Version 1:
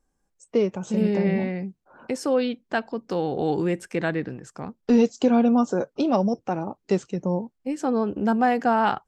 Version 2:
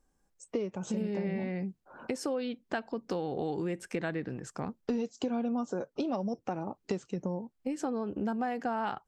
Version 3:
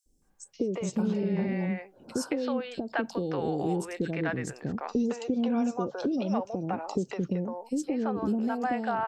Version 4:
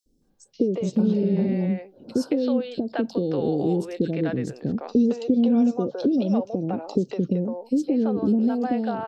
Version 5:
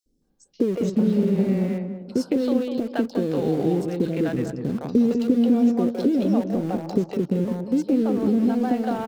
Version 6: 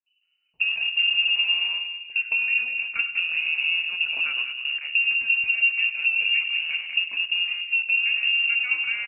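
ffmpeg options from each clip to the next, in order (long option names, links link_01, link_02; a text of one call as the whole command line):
ffmpeg -i in.wav -af "acompressor=threshold=-31dB:ratio=5" out.wav
ffmpeg -i in.wav -filter_complex "[0:a]acrossover=split=520|3600[link_01][link_02][link_03];[link_01]adelay=60[link_04];[link_02]adelay=220[link_05];[link_04][link_05][link_03]amix=inputs=3:normalize=0,volume=5.5dB" out.wav
ffmpeg -i in.wav -af "equalizer=frequency=125:width_type=o:width=1:gain=4,equalizer=frequency=250:width_type=o:width=1:gain=7,equalizer=frequency=500:width_type=o:width=1:gain=6,equalizer=frequency=1000:width_type=o:width=1:gain=-5,equalizer=frequency=2000:width_type=o:width=1:gain=-6,equalizer=frequency=4000:width_type=o:width=1:gain=8,equalizer=frequency=8000:width_type=o:width=1:gain=-8" out.wav
ffmpeg -i in.wav -filter_complex "[0:a]asplit=2[link_01][link_02];[link_02]aeval=exprs='val(0)*gte(abs(val(0)),0.0355)':channel_layout=same,volume=-6.5dB[link_03];[link_01][link_03]amix=inputs=2:normalize=0,asplit=2[link_04][link_05];[link_05]adelay=198,lowpass=frequency=930:poles=1,volume=-6dB,asplit=2[link_06][link_07];[link_07]adelay=198,lowpass=frequency=930:poles=1,volume=0.35,asplit=2[link_08][link_09];[link_09]adelay=198,lowpass=frequency=930:poles=1,volume=0.35,asplit=2[link_10][link_11];[link_11]adelay=198,lowpass=frequency=930:poles=1,volume=0.35[link_12];[link_04][link_06][link_08][link_10][link_12]amix=inputs=5:normalize=0,volume=-3dB" out.wav
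ffmpeg -i in.wav -af "bandreject=frequency=78.35:width_type=h:width=4,bandreject=frequency=156.7:width_type=h:width=4,bandreject=frequency=235.05:width_type=h:width=4,bandreject=frequency=313.4:width_type=h:width=4,bandreject=frequency=391.75:width_type=h:width=4,bandreject=frequency=470.1:width_type=h:width=4,bandreject=frequency=548.45:width_type=h:width=4,bandreject=frequency=626.8:width_type=h:width=4,bandreject=frequency=705.15:width_type=h:width=4,bandreject=frequency=783.5:width_type=h:width=4,bandreject=frequency=861.85:width_type=h:width=4,bandreject=frequency=940.2:width_type=h:width=4,bandreject=frequency=1018.55:width_type=h:width=4,bandreject=frequency=1096.9:width_type=h:width=4,bandreject=frequency=1175.25:width_type=h:width=4,bandreject=frequency=1253.6:width_type=h:width=4,bandreject=frequency=1331.95:width_type=h:width=4,bandreject=frequency=1410.3:width_type=h:width=4,bandreject=frequency=1488.65:width_type=h:width=4,bandreject=frequency=1567:width_type=h:width=4,bandreject=frequency=1645.35:width_type=h:width=4,bandreject=frequency=1723.7:width_type=h:width=4,bandreject=frequency=1802.05:width_type=h:width=4,bandreject=frequency=1880.4:width_type=h:width=4,bandreject=frequency=1958.75:width_type=h:width=4,bandreject=frequency=2037.1:width_type=h:width=4,bandreject=frequency=2115.45:width_type=h:width=4,bandreject=frequency=2193.8:width_type=h:width=4,bandreject=frequency=2272.15:width_type=h:width=4,bandreject=frequency=2350.5:width_type=h:width=4,bandreject=frequency=2428.85:width_type=h:width=4,bandreject=frequency=2507.2:width_type=h:width=4,bandreject=frequency=2585.55:width_type=h:width=4,bandreject=frequency=2663.9:width_type=h:width=4,bandreject=frequency=2742.25:width_type=h:width=4,bandreject=frequency=2820.6:width_type=h:width=4,bandreject=frequency=2898.95:width_type=h:width=4,bandreject=frequency=2977.3:width_type=h:width=4,lowpass=frequency=2600:width_type=q:width=0.5098,lowpass=frequency=2600:width_type=q:width=0.6013,lowpass=frequency=2600:width_type=q:width=0.9,lowpass=frequency=2600:width_type=q:width=2.563,afreqshift=-3000,aecho=1:1:100:0.178,volume=-2dB" out.wav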